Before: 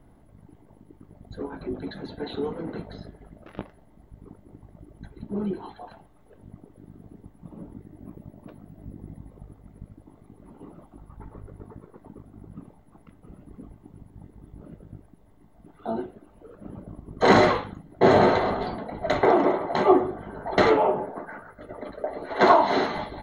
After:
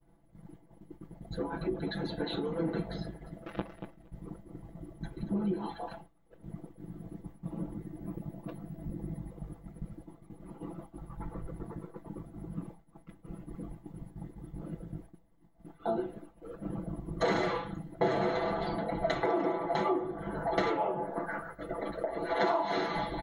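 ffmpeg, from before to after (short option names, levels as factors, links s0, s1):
-filter_complex "[0:a]asettb=1/sr,asplit=3[s0][s1][s2];[s0]atrim=end=3.034[s3];[s1]atrim=start=3.03:end=5.66,asetpts=PTS-STARTPTS,afade=t=in:d=0.004:c=qsin,afade=t=out:st=2.626:d=0.004:c=qsin,aecho=1:1:232|464|696:0.282|0.062|0.0136,atrim=end_sample=115983[s4];[s2]atrim=start=5.656[s5];[s3][s4]acrossfade=d=0.004:c1=hsin:c2=qsin[s6];[s6][s5]acrossfade=d=0.004:c1=qsin:c2=hsin,agate=range=0.0224:threshold=0.00562:ratio=3:detection=peak,acompressor=threshold=0.0251:ratio=4,aecho=1:1:6:0.99"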